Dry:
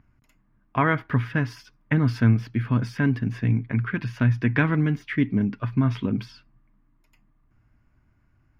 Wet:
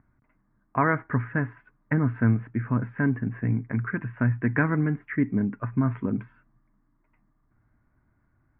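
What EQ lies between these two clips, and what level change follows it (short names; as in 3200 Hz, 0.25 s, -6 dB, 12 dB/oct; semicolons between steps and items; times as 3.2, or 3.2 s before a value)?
steep low-pass 2000 Hz 36 dB/oct; air absorption 93 m; low shelf 140 Hz -6.5 dB; 0.0 dB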